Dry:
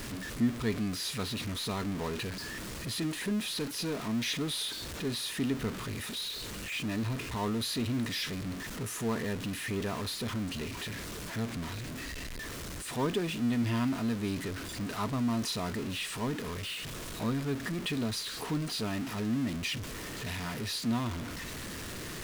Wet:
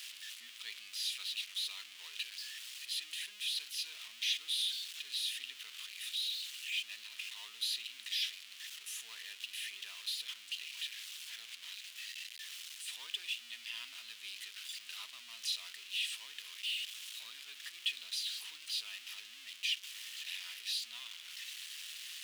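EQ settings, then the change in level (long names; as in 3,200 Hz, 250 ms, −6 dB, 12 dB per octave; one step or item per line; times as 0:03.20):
high-pass with resonance 3,000 Hz, resonance Q 2.7
−5.5 dB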